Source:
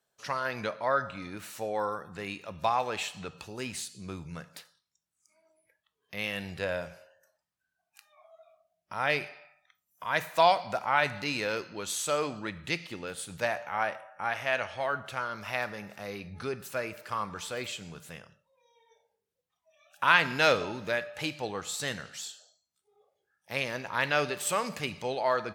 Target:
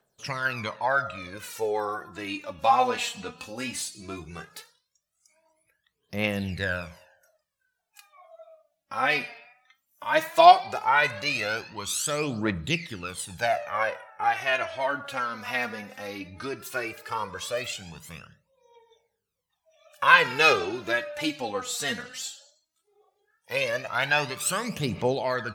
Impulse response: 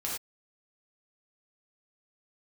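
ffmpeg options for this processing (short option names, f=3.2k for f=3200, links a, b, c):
-filter_complex "[0:a]asettb=1/sr,asplit=3[a][b][c];[a]atrim=end=2.564[d];[b]atrim=start=2.56:end=4.56,asetpts=PTS-STARTPTS,afade=t=in:d=0.004:c=qsin,afade=t=out:st=1.996:d=0.004:c=qsin,asplit=2[e][f];[f]adelay=25,volume=-7dB[g];[e][g]amix=inputs=2:normalize=0,atrim=end_sample=88200[h];[c]atrim=start=4.556[i];[d][h]acrossfade=d=0.004:c1=hsin:c2=qsin[j];[j][i]acrossfade=d=0.004:c1=qsin:c2=hsin,aphaser=in_gain=1:out_gain=1:delay=4.3:decay=0.71:speed=0.16:type=triangular,volume=1.5dB"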